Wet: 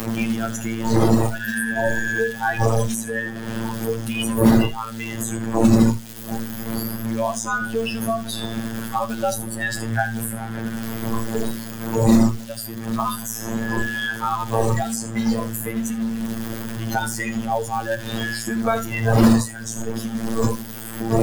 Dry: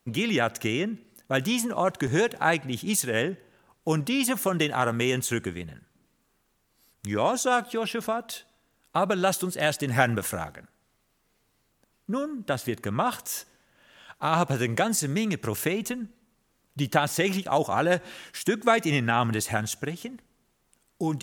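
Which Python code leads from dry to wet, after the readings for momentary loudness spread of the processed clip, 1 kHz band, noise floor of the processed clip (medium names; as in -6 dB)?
12 LU, +2.0 dB, -33 dBFS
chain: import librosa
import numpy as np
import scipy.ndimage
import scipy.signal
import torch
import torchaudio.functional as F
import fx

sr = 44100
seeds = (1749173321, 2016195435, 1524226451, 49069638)

p1 = x + 0.5 * 10.0 ** (-20.0 / 20.0) * np.sign(x)
p2 = fx.dmg_wind(p1, sr, seeds[0], corner_hz=540.0, level_db=-16.0)
p3 = fx.spec_repair(p2, sr, seeds[1], start_s=1.42, length_s=0.71, low_hz=1000.0, high_hz=8100.0, source='both')
p4 = fx.peak_eq(p3, sr, hz=210.0, db=13.0, octaves=0.34)
p5 = fx.robotise(p4, sr, hz=113.0)
p6 = fx.quant_float(p5, sr, bits=2)
p7 = p6 + fx.echo_feedback(p6, sr, ms=79, feedback_pct=46, wet_db=-8.0, dry=0)
p8 = fx.noise_reduce_blind(p7, sr, reduce_db=16)
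y = fx.band_squash(p8, sr, depth_pct=70)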